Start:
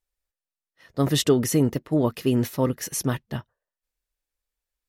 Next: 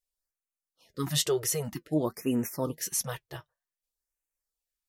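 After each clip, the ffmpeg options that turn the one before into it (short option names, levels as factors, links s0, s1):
-af "bass=f=250:g=-4,treble=f=4000:g=6,flanger=delay=3.7:depth=3.1:regen=59:speed=1.3:shape=triangular,afftfilt=real='re*(1-between(b*sr/1024,210*pow(4300/210,0.5+0.5*sin(2*PI*0.53*pts/sr))/1.41,210*pow(4300/210,0.5+0.5*sin(2*PI*0.53*pts/sr))*1.41))':imag='im*(1-between(b*sr/1024,210*pow(4300/210,0.5+0.5*sin(2*PI*0.53*pts/sr))/1.41,210*pow(4300/210,0.5+0.5*sin(2*PI*0.53*pts/sr))*1.41))':win_size=1024:overlap=0.75,volume=0.794"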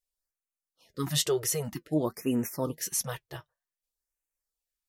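-af anull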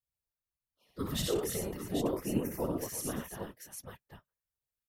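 -af "equalizer=f=6100:w=0.8:g=-7,aecho=1:1:61|88|116|336|349|792:0.596|0.531|0.422|0.133|0.237|0.501,afftfilt=real='hypot(re,im)*cos(2*PI*random(0))':imag='hypot(re,im)*sin(2*PI*random(1))':win_size=512:overlap=0.75"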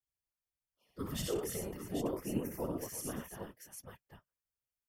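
-af "bandreject=f=3900:w=5.6,volume=0.631"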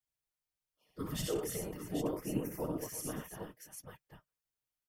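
-af "aecho=1:1:6.5:0.31"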